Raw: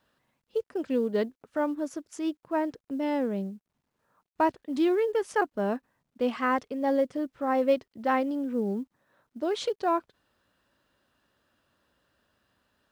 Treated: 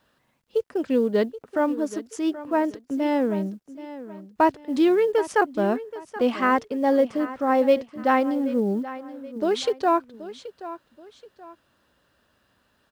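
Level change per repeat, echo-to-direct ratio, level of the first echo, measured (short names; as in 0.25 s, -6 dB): -9.0 dB, -14.5 dB, -15.0 dB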